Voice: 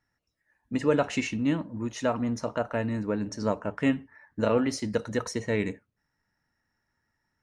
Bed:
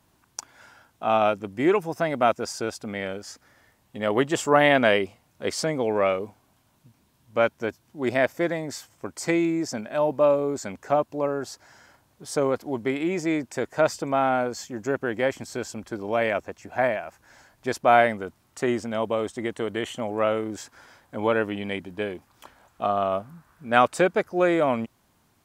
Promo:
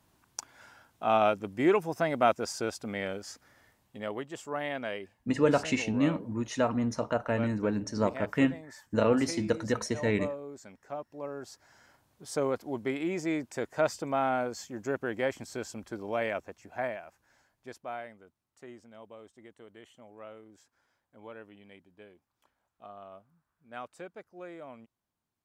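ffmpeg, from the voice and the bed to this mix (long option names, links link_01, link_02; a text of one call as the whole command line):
ffmpeg -i stem1.wav -i stem2.wav -filter_complex "[0:a]adelay=4550,volume=-0.5dB[link_01];[1:a]volume=7dB,afade=type=out:start_time=3.67:duration=0.54:silence=0.223872,afade=type=in:start_time=11.04:duration=0.97:silence=0.298538,afade=type=out:start_time=15.86:duration=2.14:silence=0.133352[link_02];[link_01][link_02]amix=inputs=2:normalize=0" out.wav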